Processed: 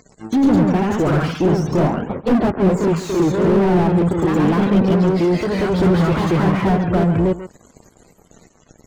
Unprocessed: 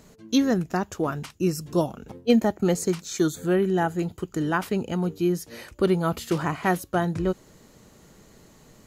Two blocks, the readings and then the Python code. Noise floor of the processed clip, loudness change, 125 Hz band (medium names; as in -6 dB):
-54 dBFS, +8.5 dB, +11.5 dB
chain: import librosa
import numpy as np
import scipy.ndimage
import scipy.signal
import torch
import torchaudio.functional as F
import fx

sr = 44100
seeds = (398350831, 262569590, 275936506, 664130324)

y = fx.spec_box(x, sr, start_s=7.94, length_s=0.37, low_hz=550.0, high_hz=8600.0, gain_db=-8)
y = fx.env_lowpass_down(y, sr, base_hz=1300.0, full_db=-18.5)
y = fx.high_shelf(y, sr, hz=3400.0, db=5.5)
y = fx.leveller(y, sr, passes=5)
y = fx.spec_topn(y, sr, count=64)
y = fx.echo_pitch(y, sr, ms=123, semitones=1, count=2, db_per_echo=-3.0)
y = y + 10.0 ** (-15.5 / 20.0) * np.pad(y, (int(139 * sr / 1000.0), 0))[:len(y)]
y = fx.slew_limit(y, sr, full_power_hz=140.0)
y = y * 10.0 ** (-3.0 / 20.0)